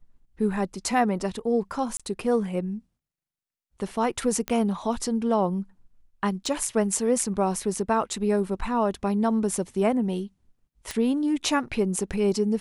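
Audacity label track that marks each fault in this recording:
1.970000	2.000000	drop-out 26 ms
4.480000	4.480000	click −13 dBFS
6.460000	6.460000	drop-out 3.3 ms
10.910000	10.910000	click −15 dBFS

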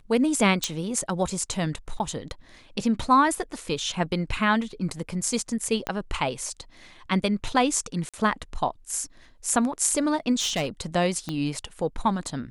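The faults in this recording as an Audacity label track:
0.640000	0.640000	click −10 dBFS
1.990000	2.000000	drop-out 9.3 ms
5.870000	5.870000	click −13 dBFS
8.090000	8.140000	drop-out 46 ms
10.390000	10.670000	clipping −21.5 dBFS
11.290000	11.290000	click −16 dBFS

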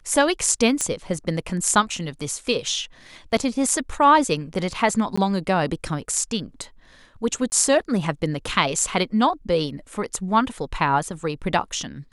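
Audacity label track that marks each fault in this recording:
0.810000	0.810000	click −9 dBFS
5.160000	5.170000	drop-out 15 ms
7.500000	7.520000	drop-out 19 ms

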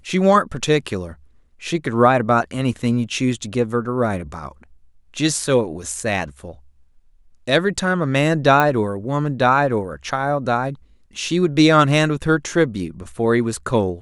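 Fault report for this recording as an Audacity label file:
8.600000	8.600000	click −5 dBFS

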